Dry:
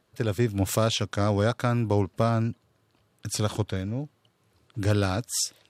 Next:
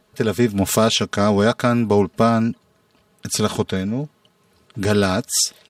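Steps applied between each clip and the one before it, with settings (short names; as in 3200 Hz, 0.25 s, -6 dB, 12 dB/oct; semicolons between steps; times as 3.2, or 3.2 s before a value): comb 4.7 ms, depth 59%; gain +7.5 dB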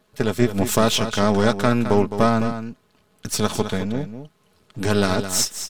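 half-wave gain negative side -7 dB; echo 0.213 s -10 dB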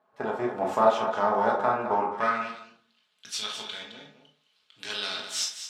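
band-pass sweep 870 Hz -> 3400 Hz, 1.91–2.6; reverb RT60 0.55 s, pre-delay 12 ms, DRR -1 dB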